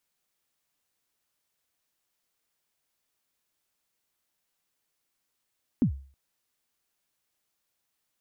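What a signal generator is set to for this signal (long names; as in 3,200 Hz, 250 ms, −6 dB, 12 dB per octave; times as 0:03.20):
synth kick length 0.32 s, from 290 Hz, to 68 Hz, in 95 ms, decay 0.42 s, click off, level −16 dB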